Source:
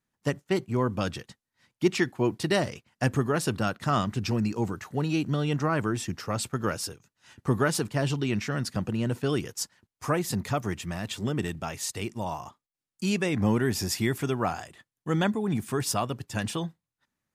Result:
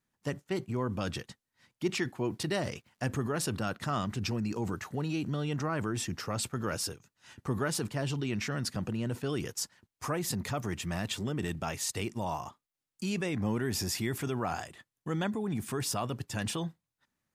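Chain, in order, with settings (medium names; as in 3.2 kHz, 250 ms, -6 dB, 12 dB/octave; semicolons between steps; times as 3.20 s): in parallel at -0.5 dB: compressor with a negative ratio -33 dBFS, ratio -1; 2.22–3.08 s: on the sum: crackle 200 per s -52 dBFS; trim -8.5 dB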